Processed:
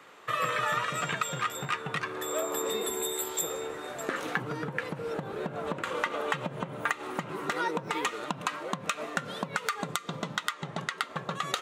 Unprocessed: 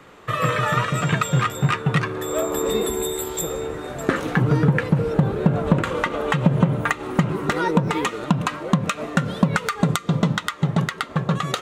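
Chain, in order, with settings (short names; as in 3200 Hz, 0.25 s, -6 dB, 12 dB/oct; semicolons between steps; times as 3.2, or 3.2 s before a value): 10.53–10.98 LPF 10000 Hz 12 dB/oct; compressor, threshold -19 dBFS, peak gain reduction 9 dB; HPF 690 Hz 6 dB/oct; gain -3 dB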